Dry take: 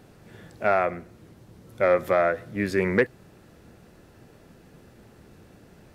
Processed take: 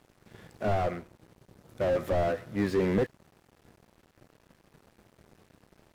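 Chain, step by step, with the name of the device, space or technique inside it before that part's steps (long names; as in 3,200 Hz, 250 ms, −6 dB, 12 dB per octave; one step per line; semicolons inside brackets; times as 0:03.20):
early transistor amplifier (dead-zone distortion −50.5 dBFS; slew-rate limiting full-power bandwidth 34 Hz)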